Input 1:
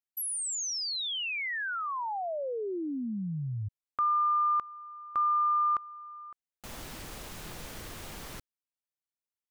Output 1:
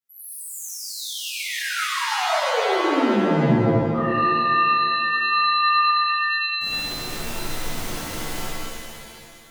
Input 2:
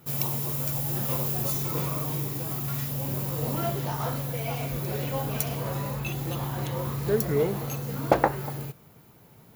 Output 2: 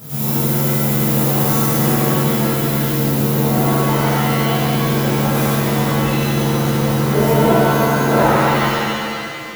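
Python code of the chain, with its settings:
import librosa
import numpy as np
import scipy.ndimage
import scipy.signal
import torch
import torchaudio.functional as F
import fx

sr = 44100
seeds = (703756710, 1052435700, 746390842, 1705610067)

y = fx.spec_steps(x, sr, hold_ms=100)
y = fx.rev_shimmer(y, sr, seeds[0], rt60_s=2.1, semitones=7, shimmer_db=-2, drr_db=-12.0)
y = y * librosa.db_to_amplitude(-1.0)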